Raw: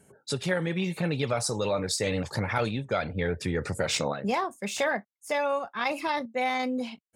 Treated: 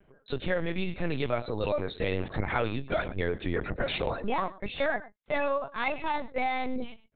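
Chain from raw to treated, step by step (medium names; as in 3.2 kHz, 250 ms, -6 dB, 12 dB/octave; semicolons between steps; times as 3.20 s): delay 111 ms -17.5 dB; LPC vocoder at 8 kHz pitch kept; trim -1 dB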